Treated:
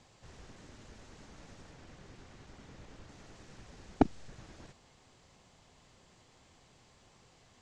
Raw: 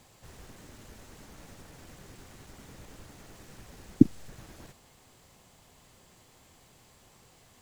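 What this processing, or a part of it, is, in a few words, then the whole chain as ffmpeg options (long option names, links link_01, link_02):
synthesiser wavefolder: -filter_complex "[0:a]asettb=1/sr,asplit=3[link_01][link_02][link_03];[link_01]atrim=end=1.734[link_04];[link_02]atrim=start=1.73:end=3.09,asetpts=PTS-STARTPTS,afade=type=in:duration=0.004:curve=qsin,afade=type=out:start_time=1.356:duration=0.004:curve=qsin,highshelf=frequency=6400:gain=-6[link_05];[link_03]atrim=start=3.086[link_06];[link_04][link_05]acrossfade=duration=0.004:curve1=hsin:curve2=qsin[link_07];[link_07][link_06]acrossfade=duration=0.004:curve1=qsin:curve2=hsin,aeval=exprs='0.376*(abs(mod(val(0)/0.376+3,4)-2)-1)':channel_layout=same,lowpass=frequency=7100:width=0.5412,lowpass=frequency=7100:width=1.3066,volume=-3dB"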